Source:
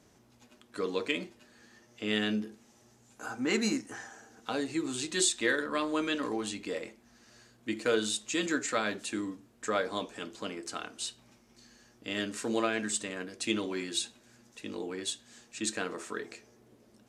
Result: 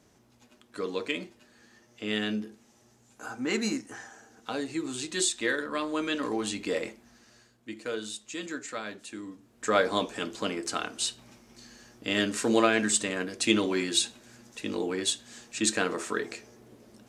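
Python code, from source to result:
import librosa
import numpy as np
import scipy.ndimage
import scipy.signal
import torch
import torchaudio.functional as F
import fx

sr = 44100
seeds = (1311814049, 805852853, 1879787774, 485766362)

y = fx.gain(x, sr, db=fx.line((5.93, 0.0), (6.87, 7.0), (7.69, -6.0), (9.2, -6.0), (9.79, 7.0)))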